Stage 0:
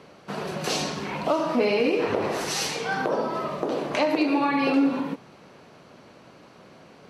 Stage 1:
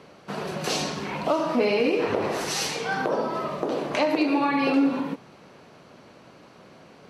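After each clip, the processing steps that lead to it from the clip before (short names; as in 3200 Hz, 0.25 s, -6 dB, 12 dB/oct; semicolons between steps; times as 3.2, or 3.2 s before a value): nothing audible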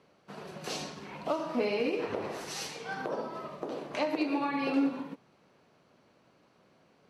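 upward expander 1.5:1, over -35 dBFS; gain -6 dB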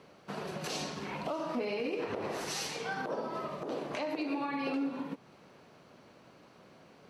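compressor 2:1, threshold -44 dBFS, peak gain reduction 11.5 dB; limiter -33 dBFS, peak gain reduction 6.5 dB; gain +7 dB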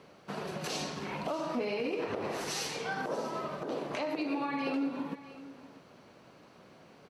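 echo 0.64 s -16.5 dB; gain +1 dB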